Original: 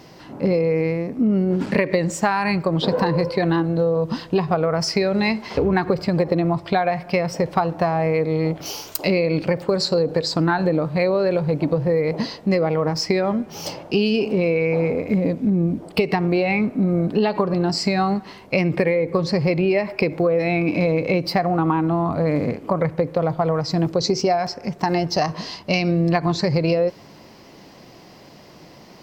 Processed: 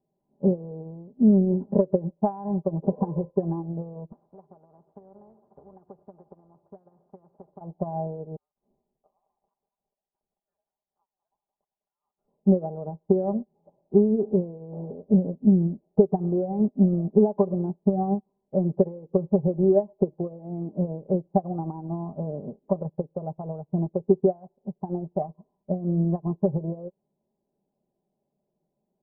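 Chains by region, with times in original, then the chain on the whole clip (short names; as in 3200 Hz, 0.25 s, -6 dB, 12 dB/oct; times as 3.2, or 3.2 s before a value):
4.12–7.61 HPF 120 Hz + low shelf 200 Hz -5.5 dB + spectral compressor 4:1
8.36–12.28 compressor 10:1, threshold -21 dBFS + thin delay 0.204 s, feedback 51%, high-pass 1800 Hz, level -12 dB + inverted band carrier 3300 Hz
whole clip: steep low-pass 830 Hz 36 dB/oct; comb 5 ms, depth 66%; upward expander 2.5:1, over -34 dBFS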